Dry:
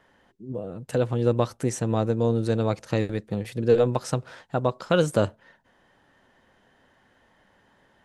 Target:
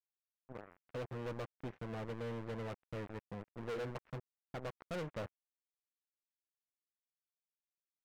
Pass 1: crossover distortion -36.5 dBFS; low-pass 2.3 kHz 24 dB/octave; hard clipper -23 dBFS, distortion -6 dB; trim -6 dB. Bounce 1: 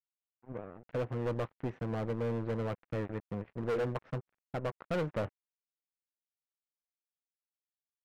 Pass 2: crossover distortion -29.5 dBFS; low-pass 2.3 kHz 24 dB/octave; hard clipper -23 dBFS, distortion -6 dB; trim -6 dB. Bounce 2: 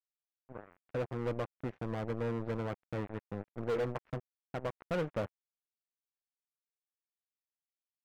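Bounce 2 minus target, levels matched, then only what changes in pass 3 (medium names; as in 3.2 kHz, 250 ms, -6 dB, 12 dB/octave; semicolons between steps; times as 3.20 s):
hard clipper: distortion -4 dB
change: hard clipper -32 dBFS, distortion -2 dB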